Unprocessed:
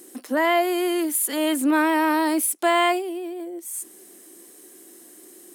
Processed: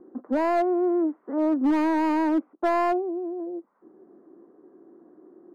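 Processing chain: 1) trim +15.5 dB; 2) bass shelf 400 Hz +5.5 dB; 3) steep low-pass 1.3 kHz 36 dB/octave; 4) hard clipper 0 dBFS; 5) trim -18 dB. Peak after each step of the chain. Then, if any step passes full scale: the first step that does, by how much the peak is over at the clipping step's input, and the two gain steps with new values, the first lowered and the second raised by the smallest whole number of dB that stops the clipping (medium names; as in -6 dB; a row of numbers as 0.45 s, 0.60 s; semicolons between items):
+7.0 dBFS, +8.0 dBFS, +7.0 dBFS, 0.0 dBFS, -18.0 dBFS; step 1, 7.0 dB; step 1 +8.5 dB, step 5 -11 dB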